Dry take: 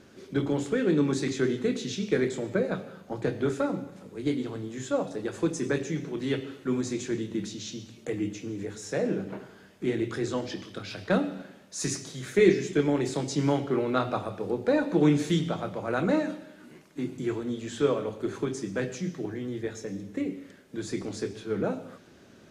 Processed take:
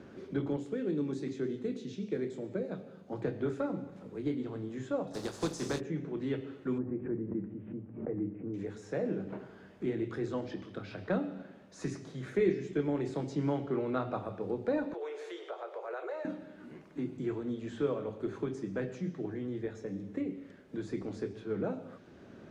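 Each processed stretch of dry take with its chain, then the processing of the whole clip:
0.56–3.13 s: high-pass 200 Hz 6 dB/octave + peaking EQ 1.3 kHz -8.5 dB 2.4 oct
5.13–5.79 s: spectral contrast reduction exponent 0.57 + resonant high shelf 3.4 kHz +12.5 dB, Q 1.5
6.78–8.54 s: Gaussian low-pass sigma 6.4 samples + swell ahead of each attack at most 110 dB/s
14.93–16.25 s: steep high-pass 370 Hz 96 dB/octave + compression 2:1, threshold -37 dBFS
whole clip: low-pass 1.4 kHz 6 dB/octave; three bands compressed up and down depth 40%; trim -5 dB

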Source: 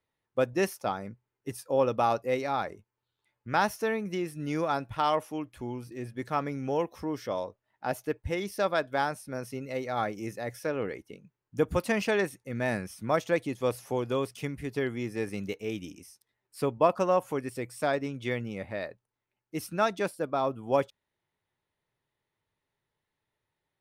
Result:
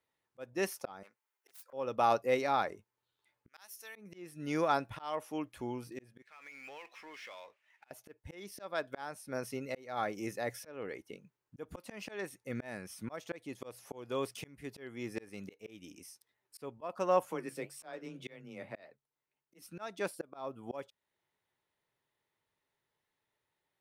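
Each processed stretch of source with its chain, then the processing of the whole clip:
1.03–1.73 s: self-modulated delay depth 0.41 ms + high-pass 800 Hz + treble shelf 9.9 kHz +6.5 dB
3.48–3.96 s: differentiator + hum notches 60/120/180/240/300/360/420 Hz
6.22–7.91 s: band-pass filter 2.4 kHz, Q 3.5 + power-law waveshaper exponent 0.7 + compression 5:1, threshold -44 dBFS
17.25–19.62 s: flange 1.8 Hz, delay 4.4 ms, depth 9.7 ms, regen -66% + frequency shift +18 Hz
whole clip: bass shelf 180 Hz -9.5 dB; slow attack 426 ms

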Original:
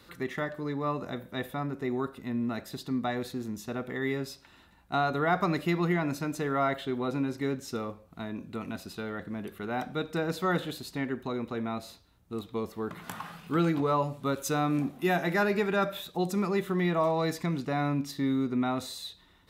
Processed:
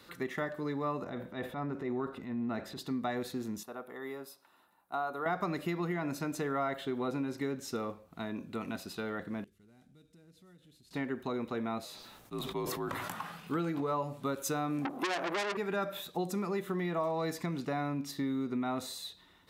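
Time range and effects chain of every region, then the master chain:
1.04–2.79 s: low-pass 2.2 kHz 6 dB/octave + transient shaper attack -7 dB, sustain +5 dB
3.63–5.26 s: high-pass 1 kHz 6 dB/octave + high-order bell 3.6 kHz -12 dB 2.5 oct
9.44–10.91 s: CVSD coder 64 kbps + amplifier tone stack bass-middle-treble 10-0-1 + compression 4:1, threshold -55 dBFS
11.85–13.10 s: high-pass 320 Hz 6 dB/octave + frequency shift -63 Hz + decay stretcher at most 23 dB/s
14.85–15.57 s: high-order bell 570 Hz +12.5 dB 2.8 oct + hum notches 60/120/180 Hz + transformer saturation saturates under 3.8 kHz
whole clip: dynamic bell 3.5 kHz, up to -3 dB, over -44 dBFS, Q 0.76; compression, threshold -29 dBFS; bass shelf 93 Hz -11.5 dB

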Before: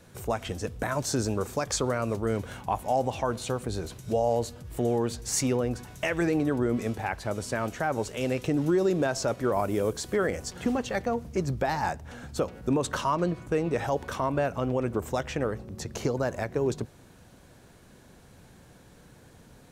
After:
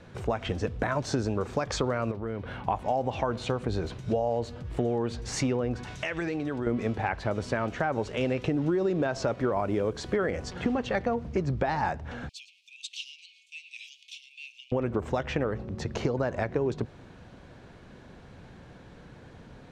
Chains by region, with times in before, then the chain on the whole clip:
2.11–2.65 s: peaking EQ 7.1 kHz -11.5 dB 0.7 oct + compression 2.5:1, threshold -38 dBFS
5.83–6.67 s: treble shelf 2 kHz +10.5 dB + compression 2.5:1, threshold -37 dBFS + low-pass 10 kHz
12.29–14.72 s: steep high-pass 2.4 kHz 96 dB/octave + delay 110 ms -17 dB
whole clip: low-pass 3.6 kHz 12 dB/octave; compression, threshold -28 dBFS; trim +4.5 dB

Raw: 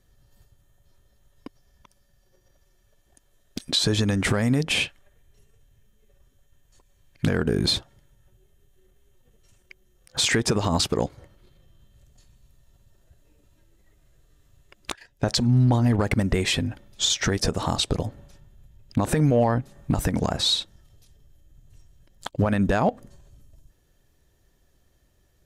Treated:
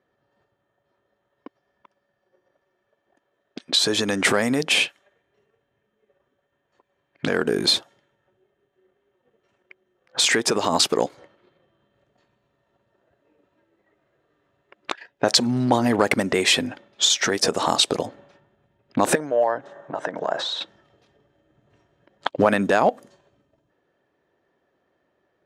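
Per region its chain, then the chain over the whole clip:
19.15–20.61 s: compression, threshold -30 dBFS + cabinet simulation 180–9000 Hz, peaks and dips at 230 Hz -10 dB, 620 Hz +8 dB, 960 Hz +4 dB, 1.6 kHz +6 dB, 2.4 kHz -8 dB, 4.6 kHz -7 dB
whole clip: high-pass 330 Hz 12 dB/octave; level-controlled noise filter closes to 1.7 kHz, open at -23.5 dBFS; gain riding within 5 dB 0.5 s; trim +6.5 dB

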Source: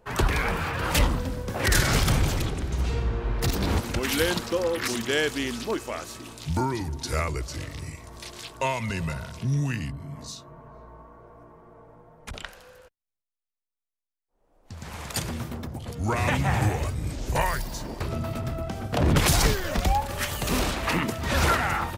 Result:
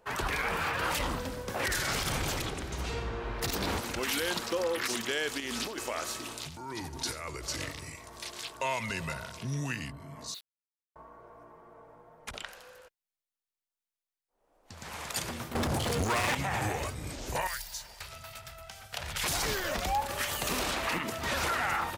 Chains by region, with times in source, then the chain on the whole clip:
5.40–7.72 s: compressor with a negative ratio -33 dBFS + delay 87 ms -14.5 dB
10.34–10.96 s: brick-wall FIR band-pass 1.9–4.7 kHz + word length cut 8-bit, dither none
15.55–16.35 s: CVSD coder 64 kbps + waveshaping leveller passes 5
17.47–19.24 s: amplifier tone stack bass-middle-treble 10-0-10 + band-stop 1.1 kHz, Q 9.5
whole clip: bass shelf 280 Hz -12 dB; peak limiter -21.5 dBFS

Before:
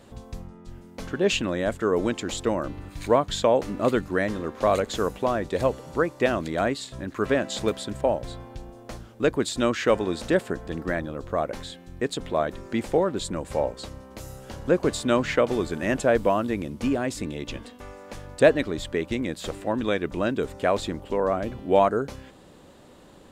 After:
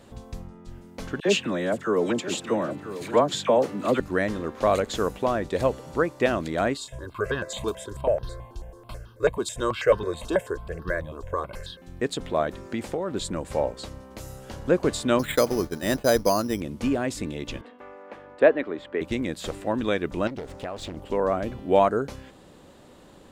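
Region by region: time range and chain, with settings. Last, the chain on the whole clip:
1.20–4.00 s: high-pass 120 Hz 24 dB/octave + phase dispersion lows, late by 55 ms, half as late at 1.2 kHz + delay 985 ms -12.5 dB
6.77–11.82 s: comb 1.9 ms, depth 61% + stepped phaser 9.2 Hz 530–2200 Hz
12.55–13.12 s: high-pass 46 Hz + compression 5:1, threshold -24 dBFS
15.19–16.61 s: expander -28 dBFS + careless resampling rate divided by 8×, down filtered, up hold
17.61–19.01 s: high-pass 48 Hz + three-band isolator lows -19 dB, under 240 Hz, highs -24 dB, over 2.7 kHz
20.27–20.97 s: median filter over 3 samples + compression 4:1, threshold -31 dBFS + loudspeaker Doppler distortion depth 0.69 ms
whole clip: none

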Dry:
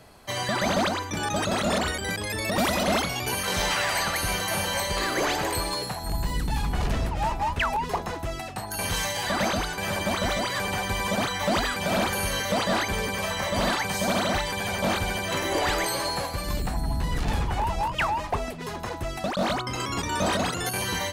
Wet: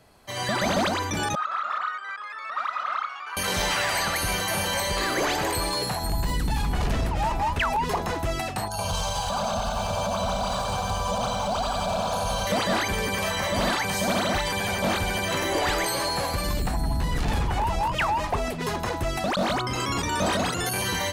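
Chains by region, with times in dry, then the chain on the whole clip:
1.35–3.37 s: ladder band-pass 1.3 kHz, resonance 85% + transformer saturation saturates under 960 Hz
8.68–12.47 s: distance through air 62 m + static phaser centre 790 Hz, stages 4 + bit-crushed delay 88 ms, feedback 80%, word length 9-bit, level -4.5 dB
whole clip: level rider gain up to 12 dB; peak limiter -12 dBFS; trim -6 dB

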